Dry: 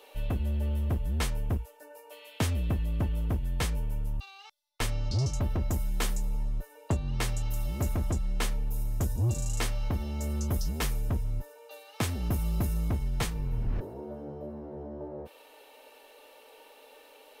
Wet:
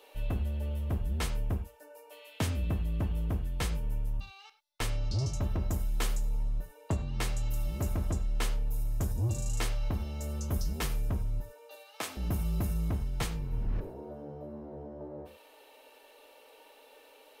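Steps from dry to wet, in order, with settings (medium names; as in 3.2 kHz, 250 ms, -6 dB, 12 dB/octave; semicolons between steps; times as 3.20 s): 11.75–12.17 s: high-pass 450 Hz 12 dB/octave; on a send: reverberation, pre-delay 3 ms, DRR 9.5 dB; on the sum: trim -3 dB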